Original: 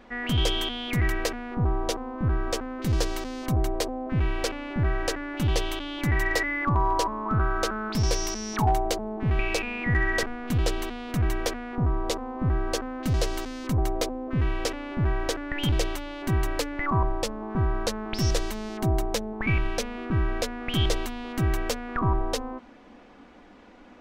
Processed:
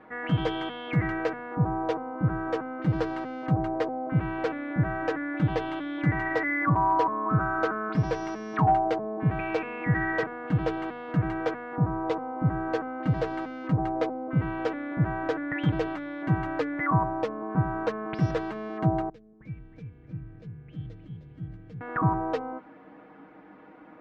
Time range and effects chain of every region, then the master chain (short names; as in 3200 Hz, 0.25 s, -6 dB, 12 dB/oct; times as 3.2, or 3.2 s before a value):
19.09–21.81 passive tone stack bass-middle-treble 10-0-1 + frequency-shifting echo 0.309 s, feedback 49%, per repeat +38 Hz, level -8.5 dB
whole clip: Chebyshev band-pass 110–1600 Hz, order 2; comb 6.4 ms, depth 77%